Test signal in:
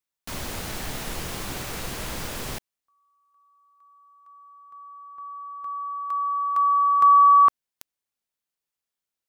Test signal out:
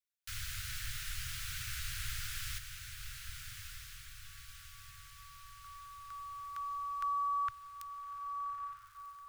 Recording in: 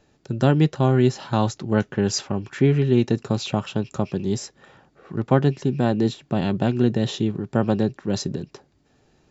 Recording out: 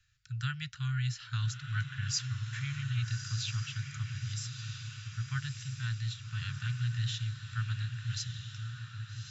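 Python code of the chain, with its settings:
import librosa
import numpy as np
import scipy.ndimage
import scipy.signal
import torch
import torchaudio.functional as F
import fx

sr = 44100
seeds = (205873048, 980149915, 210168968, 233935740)

y = scipy.signal.sosfilt(scipy.signal.cheby1(4, 1.0, [120.0, 1400.0], 'bandstop', fs=sr, output='sos'), x)
y = fx.echo_diffused(y, sr, ms=1245, feedback_pct=53, wet_db=-6.5)
y = y * 10.0 ** (-6.5 / 20.0)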